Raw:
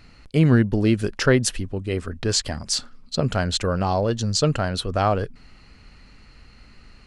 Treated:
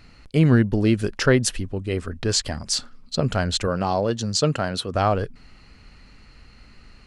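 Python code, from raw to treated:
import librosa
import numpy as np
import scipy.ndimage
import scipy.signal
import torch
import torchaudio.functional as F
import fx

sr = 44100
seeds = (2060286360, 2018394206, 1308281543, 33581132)

y = fx.highpass(x, sr, hz=120.0, slope=12, at=(3.67, 4.95))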